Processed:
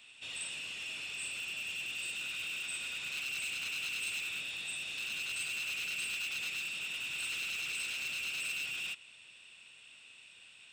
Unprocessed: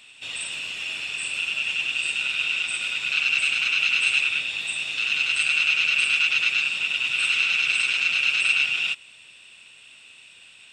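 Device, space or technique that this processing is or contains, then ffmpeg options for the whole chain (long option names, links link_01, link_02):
one-band saturation: -filter_complex "[0:a]acrossover=split=590|4500[link_01][link_02][link_03];[link_02]asoftclip=type=tanh:threshold=-32dB[link_04];[link_01][link_04][link_03]amix=inputs=3:normalize=0,volume=-7.5dB"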